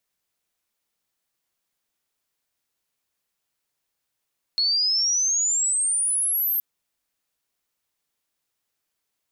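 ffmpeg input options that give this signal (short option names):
-f lavfi -i "aevalsrc='pow(10,(-18.5-2*t/2.02)/20)*sin(2*PI*4300*2.02/log(13000/4300)*(exp(log(13000/4300)*t/2.02)-1))':d=2.02:s=44100"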